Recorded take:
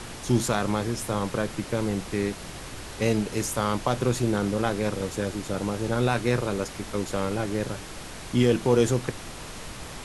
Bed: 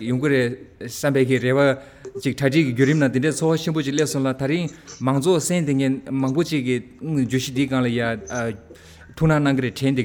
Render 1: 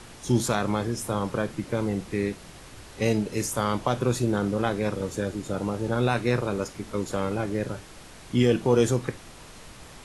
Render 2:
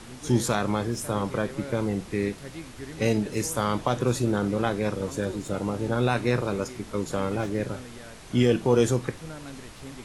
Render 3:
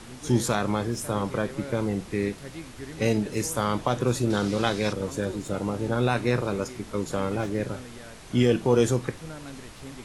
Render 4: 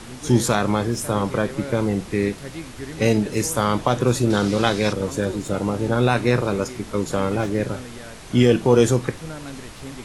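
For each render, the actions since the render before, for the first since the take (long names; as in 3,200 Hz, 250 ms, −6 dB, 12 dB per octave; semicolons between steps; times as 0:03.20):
noise reduction from a noise print 7 dB
mix in bed −23 dB
0:04.30–0:04.93: parametric band 4,700 Hz +11.5 dB 1.7 octaves
level +5.5 dB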